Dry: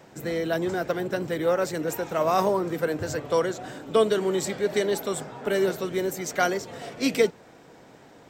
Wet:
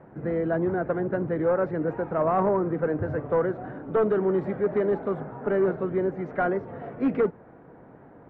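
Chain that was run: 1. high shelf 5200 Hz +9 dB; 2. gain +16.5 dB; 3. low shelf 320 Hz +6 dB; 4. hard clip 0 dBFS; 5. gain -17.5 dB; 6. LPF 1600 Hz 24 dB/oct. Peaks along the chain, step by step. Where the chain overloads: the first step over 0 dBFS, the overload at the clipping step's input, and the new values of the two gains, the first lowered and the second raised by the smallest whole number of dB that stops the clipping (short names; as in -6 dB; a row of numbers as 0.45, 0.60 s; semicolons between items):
-8.5, +8.0, +10.0, 0.0, -17.5, -15.5 dBFS; step 2, 10.0 dB; step 2 +6.5 dB, step 5 -7.5 dB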